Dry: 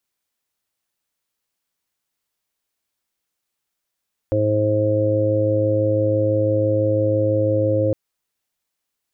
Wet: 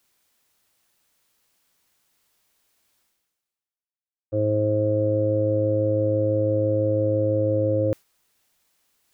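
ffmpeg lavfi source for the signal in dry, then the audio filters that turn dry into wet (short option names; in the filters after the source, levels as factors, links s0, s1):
-f lavfi -i "aevalsrc='0.0891*sin(2*PI*106*t)+0.0106*sin(2*PI*212*t)+0.0708*sin(2*PI*318*t)+0.0316*sin(2*PI*424*t)+0.126*sin(2*PI*530*t)+0.0158*sin(2*PI*636*t)':d=3.61:s=44100"
-af "agate=range=0.0224:threshold=0.2:ratio=3:detection=peak,areverse,acompressor=mode=upward:threshold=0.0178:ratio=2.5,areverse"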